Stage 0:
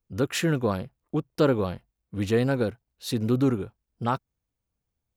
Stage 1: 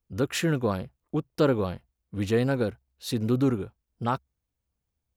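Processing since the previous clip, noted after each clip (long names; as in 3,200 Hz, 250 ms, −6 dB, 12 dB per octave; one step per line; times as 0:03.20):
parametric band 67 Hz +9 dB 0.22 octaves
level −1 dB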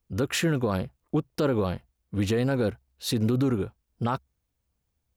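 brickwall limiter −21.5 dBFS, peak gain reduction 9.5 dB
level +4.5 dB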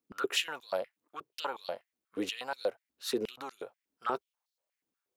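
high-pass on a step sequencer 8.3 Hz 270–4,300 Hz
level −7 dB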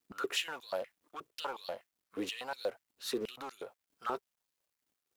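mu-law and A-law mismatch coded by mu
level −4.5 dB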